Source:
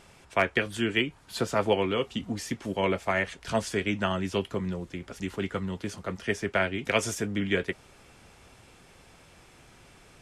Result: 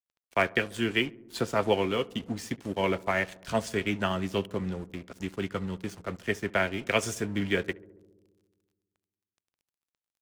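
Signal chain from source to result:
dead-zone distortion −45 dBFS
feedback echo with a low-pass in the loop 69 ms, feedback 79%, low-pass 1,100 Hz, level −20.5 dB

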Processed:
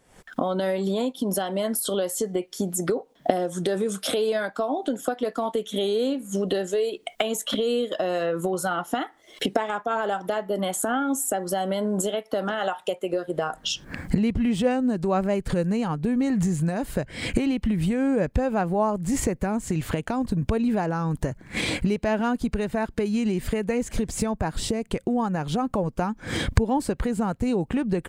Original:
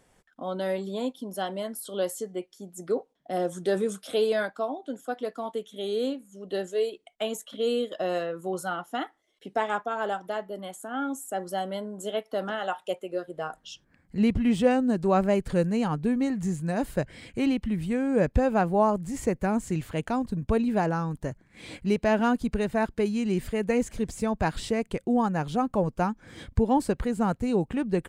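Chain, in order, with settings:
camcorder AGC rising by 74 dB per second
0:24.36–0:24.82: parametric band 4,300 Hz → 1,400 Hz −7 dB 1.8 octaves
level −1 dB

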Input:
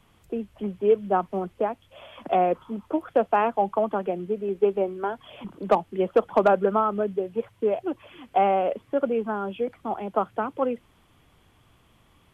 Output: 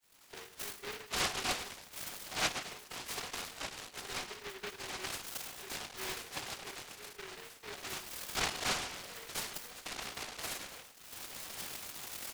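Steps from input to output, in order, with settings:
camcorder AGC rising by 45 dB per second
high-pass filter 580 Hz 24 dB per octave
first difference
double-tracking delay 19 ms −8 dB
repeating echo 104 ms, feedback 37%, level −15 dB
convolution reverb RT60 0.45 s, pre-delay 3 ms, DRR −9.5 dB
downward compressor 10 to 1, threshold −40 dBFS, peak gain reduction 16.5 dB
dynamic equaliser 3,400 Hz, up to +5 dB, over −57 dBFS, Q 2.5
resonances in every octave F#, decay 0.14 s
short delay modulated by noise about 1,700 Hz, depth 0.39 ms
level +16.5 dB

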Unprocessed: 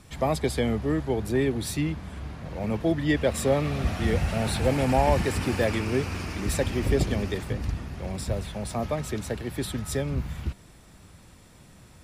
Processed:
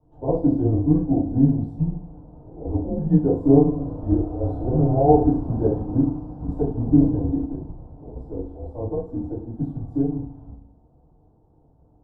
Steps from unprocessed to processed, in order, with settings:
elliptic band-pass filter 100–900 Hz, stop band 40 dB
frequency shifter −130 Hz
feedback delay network reverb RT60 0.56 s, low-frequency decay 1.45×, high-frequency decay 0.9×, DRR −9.5 dB
expander for the loud parts 1.5 to 1, over −25 dBFS
level −3 dB

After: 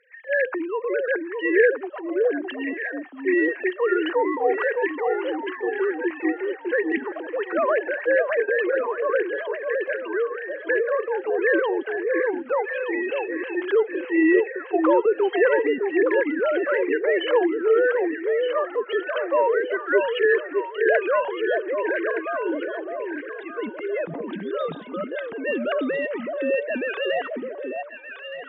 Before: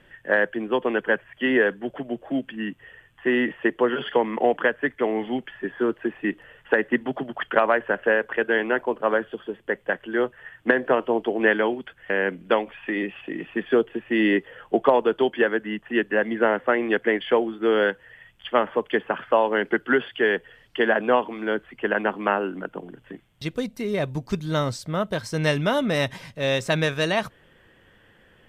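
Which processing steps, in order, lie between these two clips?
three sine waves on the formant tracks
transient designer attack −3 dB, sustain +9 dB
high-pass filter 210 Hz 6 dB per octave
delay that swaps between a low-pass and a high-pass 610 ms, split 890 Hz, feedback 61%, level −3.5 dB

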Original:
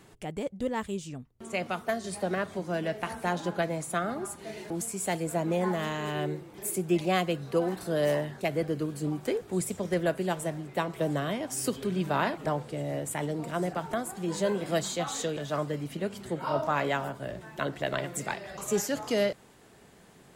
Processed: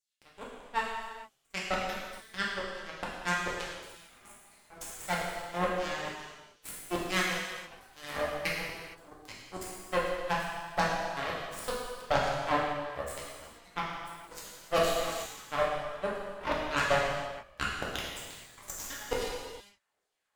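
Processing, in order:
auto-filter high-pass saw down 2.3 Hz 460–6,200 Hz
harmonic generator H 3 −14 dB, 4 −13 dB, 5 −11 dB, 7 −12 dB, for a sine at −12 dBFS
reverb whose tail is shaped and stops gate 490 ms falling, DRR −5.5 dB
level −5.5 dB

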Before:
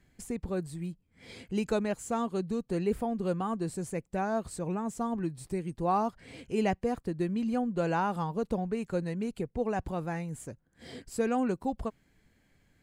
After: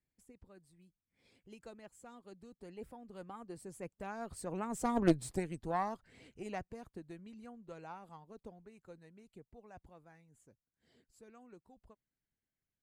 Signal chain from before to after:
source passing by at 0:05.06, 11 m/s, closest 2.1 metres
harmonic generator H 4 −9 dB, 6 −14 dB, 8 −23 dB, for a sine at −21.5 dBFS
harmonic and percussive parts rebalanced harmonic −7 dB
level +6.5 dB

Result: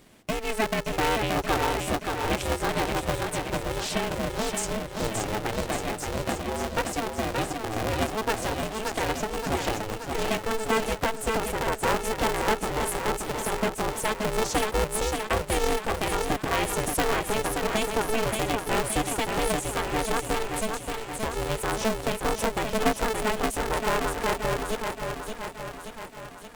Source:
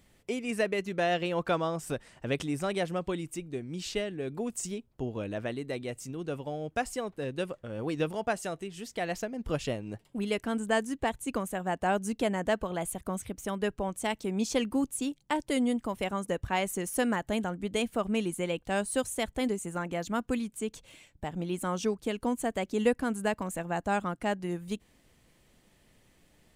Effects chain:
in parallel at +2.5 dB: downward compressor, threshold −37 dBFS, peak gain reduction 16 dB
on the sum: feedback echo with a high-pass in the loop 575 ms, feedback 64%, high-pass 160 Hz, level −4.5 dB
ring modulator with a square carrier 220 Hz

